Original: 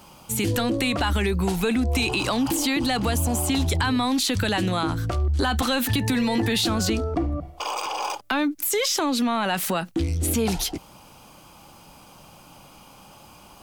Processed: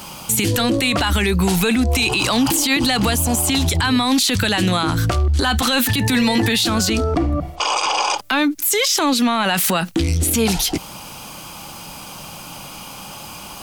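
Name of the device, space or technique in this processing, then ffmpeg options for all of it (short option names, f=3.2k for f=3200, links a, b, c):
mastering chain: -filter_complex "[0:a]asplit=3[a][b][c];[a]afade=t=out:st=7.55:d=0.02[d];[b]lowpass=f=8k:w=0.5412,lowpass=f=8k:w=1.3066,afade=t=in:st=7.55:d=0.02,afade=t=out:st=8.17:d=0.02[e];[c]afade=t=in:st=8.17:d=0.02[f];[d][e][f]amix=inputs=3:normalize=0,equalizer=f=170:t=o:w=1.1:g=3.5,acompressor=threshold=-26dB:ratio=2,tiltshelf=f=1.2k:g=-4,alimiter=level_in=20.5dB:limit=-1dB:release=50:level=0:latency=1,volume=-7.5dB"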